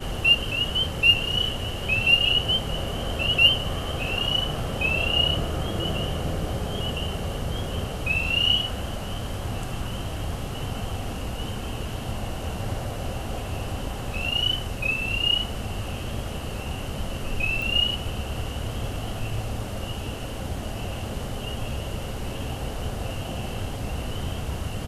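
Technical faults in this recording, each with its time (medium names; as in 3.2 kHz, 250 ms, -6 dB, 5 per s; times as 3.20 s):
17.62 s: pop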